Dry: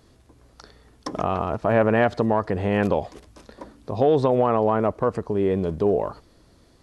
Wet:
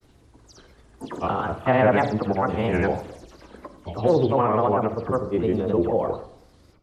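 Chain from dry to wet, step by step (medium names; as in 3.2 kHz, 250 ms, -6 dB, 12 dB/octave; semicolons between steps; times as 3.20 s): delay that grows with frequency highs early, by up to 110 ms; granulator, pitch spread up and down by 3 st; de-hum 47.38 Hz, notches 16; on a send: reverberation RT60 0.70 s, pre-delay 39 ms, DRR 12.5 dB; on the sum: trim +1.5 dB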